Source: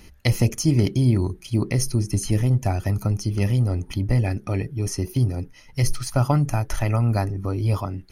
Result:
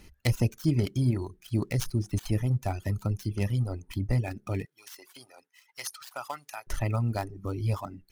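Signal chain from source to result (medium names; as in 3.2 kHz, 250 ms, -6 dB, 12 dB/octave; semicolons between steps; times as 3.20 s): dead-time distortion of 0.073 ms; 4.65–6.67 s: high-pass 980 Hz 12 dB/octave; reverb removal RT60 1 s; trim -5.5 dB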